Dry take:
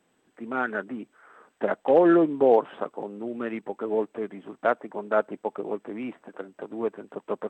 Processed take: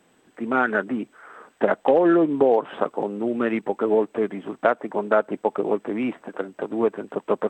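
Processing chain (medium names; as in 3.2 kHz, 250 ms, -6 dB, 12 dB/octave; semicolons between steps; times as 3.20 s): compression 5:1, threshold -23 dBFS, peak gain reduction 9.5 dB; trim +8.5 dB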